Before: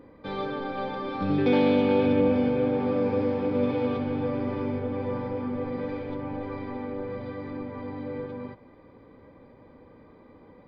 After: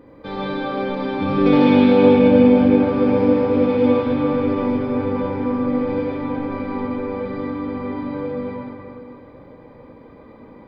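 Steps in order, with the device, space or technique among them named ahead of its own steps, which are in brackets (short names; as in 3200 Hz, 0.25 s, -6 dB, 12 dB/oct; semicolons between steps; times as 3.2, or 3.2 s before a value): stairwell (reverb RT60 2.5 s, pre-delay 69 ms, DRR -3.5 dB); gain +3.5 dB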